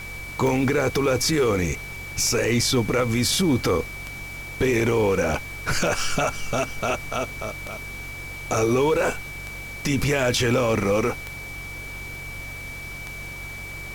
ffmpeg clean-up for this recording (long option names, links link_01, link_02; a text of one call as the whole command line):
ffmpeg -i in.wav -af "adeclick=threshold=4,bandreject=frequency=46.7:width_type=h:width=4,bandreject=frequency=93.4:width_type=h:width=4,bandreject=frequency=140.1:width_type=h:width=4,bandreject=frequency=2300:width=30,afftdn=noise_reduction=30:noise_floor=-36" out.wav